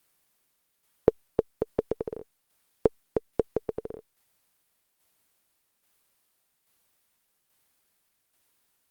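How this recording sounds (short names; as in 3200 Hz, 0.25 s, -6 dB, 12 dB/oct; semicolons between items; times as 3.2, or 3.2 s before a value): a quantiser's noise floor 12-bit, dither triangular; tremolo saw down 1.2 Hz, depth 50%; Opus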